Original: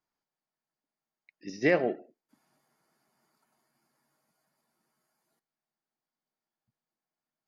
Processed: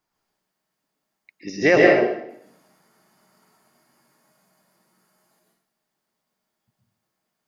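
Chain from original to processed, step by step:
dynamic equaliser 190 Hz, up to −6 dB, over −42 dBFS, Q 0.93
dense smooth reverb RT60 0.7 s, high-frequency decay 0.95×, pre-delay 105 ms, DRR −2.5 dB
level +8.5 dB

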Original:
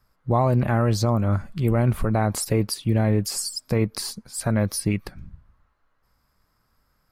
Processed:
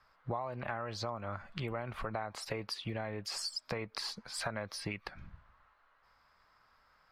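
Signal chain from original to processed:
three-way crossover with the lows and the highs turned down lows −16 dB, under 580 Hz, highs −23 dB, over 4,700 Hz
downward compressor 8 to 1, threshold −41 dBFS, peak gain reduction 20.5 dB
level +6 dB

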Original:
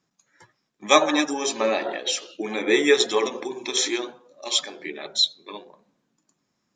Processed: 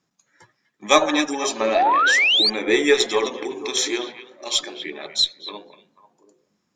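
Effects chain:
echo through a band-pass that steps 244 ms, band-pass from 2,500 Hz, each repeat −1.4 octaves, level −10 dB
sound drawn into the spectrogram rise, 0:01.75–0:02.50, 630–4,800 Hz −18 dBFS
harmonic generator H 6 −34 dB, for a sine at −2 dBFS
level +1 dB

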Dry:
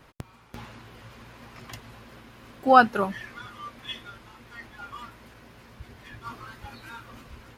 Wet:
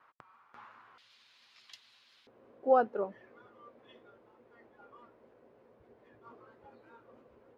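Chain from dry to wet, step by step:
resonant band-pass 1,200 Hz, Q 2.5, from 0:00.98 4,000 Hz, from 0:02.27 480 Hz
level −2.5 dB

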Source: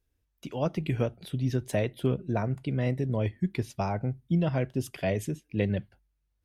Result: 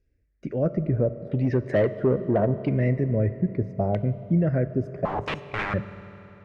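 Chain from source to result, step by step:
drawn EQ curve 600 Hz 0 dB, 900 Hz −22 dB, 1,900 Hz −5 dB, 3,300 Hz −20 dB, 5,000 Hz 0 dB
in parallel at +2 dB: brickwall limiter −24.5 dBFS, peak gain reduction 10 dB
0:05.05–0:05.74: on the sum: wrap-around overflow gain 24.5 dB
auto-filter low-pass saw down 0.76 Hz 760–2,900 Hz
0:01.29–0:02.69: mid-hump overdrive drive 18 dB, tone 1,000 Hz, clips at −11 dBFS
on a send at −12.5 dB: convolution reverb RT60 3.6 s, pre-delay 3 ms

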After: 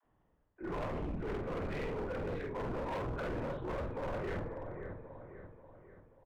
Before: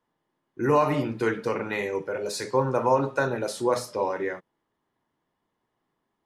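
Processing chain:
low-shelf EQ 290 Hz +5 dB
on a send at −20.5 dB: convolution reverb RT60 2.4 s, pre-delay 76 ms
on the sum: linear-prediction vocoder at 8 kHz whisper
high-frequency loss of the air 480 metres
all-pass dispersion lows, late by 47 ms, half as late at 360 Hz
reversed playback
downward compressor 6 to 1, threshold −36 dBFS, peak gain reduction 19 dB
reversed playback
double-tracking delay 49 ms −3.5 dB
repeating echo 536 ms, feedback 48%, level −12 dB
hard clipping −38 dBFS, distortion −8 dB
level +3 dB

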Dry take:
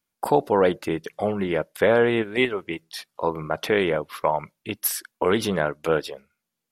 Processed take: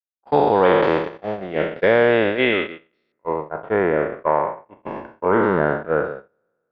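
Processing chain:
peak hold with a decay on every bin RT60 2.95 s
noise gate −18 dBFS, range −43 dB
low-pass filter 3,800 Hz 24 dB per octave, from 0:03.12 1,700 Hz

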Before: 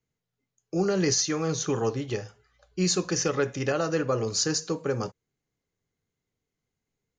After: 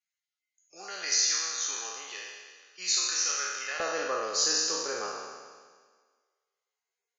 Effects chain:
peak hold with a decay on every bin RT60 1.61 s
high-pass filter 1,500 Hz 12 dB per octave, from 0:03.80 620 Hz
level −4 dB
Ogg Vorbis 32 kbit/s 16,000 Hz

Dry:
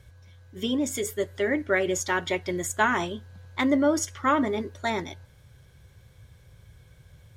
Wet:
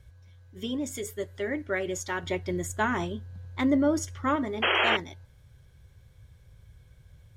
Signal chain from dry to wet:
0:02.23–0:04.36: low-shelf EQ 470 Hz +6.5 dB
0:04.62–0:04.97: sound drawn into the spectrogram noise 320–3,300 Hz −18 dBFS
low-shelf EQ 70 Hz +11.5 dB
level −6 dB

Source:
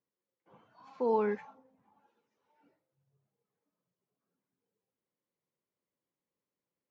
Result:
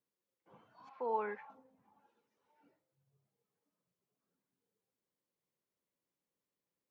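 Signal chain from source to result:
0:00.89–0:01.50: three-way crossover with the lows and the highs turned down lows −15 dB, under 560 Hz, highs −21 dB, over 3,000 Hz
level −1.5 dB

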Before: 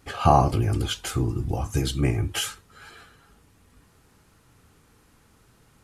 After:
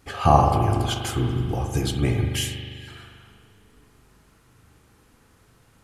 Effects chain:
0:02.35–0:02.88: linear-phase brick-wall high-pass 1,600 Hz
spring reverb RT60 2.1 s, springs 40 ms, chirp 75 ms, DRR 3.5 dB

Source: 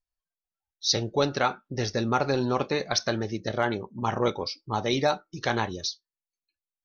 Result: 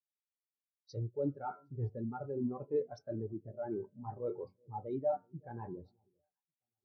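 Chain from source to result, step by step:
one scale factor per block 5 bits
low-pass that shuts in the quiet parts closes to 420 Hz, open at −20 dBFS
parametric band 4,200 Hz −7 dB 1.4 octaves
hum removal 91.01 Hz, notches 27
reversed playback
downward compressor 6 to 1, threshold −32 dBFS, peak gain reduction 12.5 dB
reversed playback
soft clipping −29.5 dBFS, distortion −15 dB
on a send: delay that swaps between a low-pass and a high-pass 381 ms, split 910 Hz, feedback 63%, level −13.5 dB
on the sum: rectangular room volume 3,300 cubic metres, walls furnished, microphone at 0.33 metres
every bin expanded away from the loudest bin 2.5 to 1
level +4 dB

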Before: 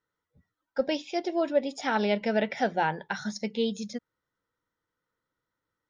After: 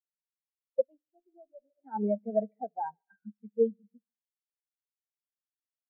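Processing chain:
echo machine with several playback heads 72 ms, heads first and second, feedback 67%, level −16.5 dB
0:00.85–0:01.75: tube saturation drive 29 dB, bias 0.75
every bin expanded away from the loudest bin 4 to 1
level −1.5 dB

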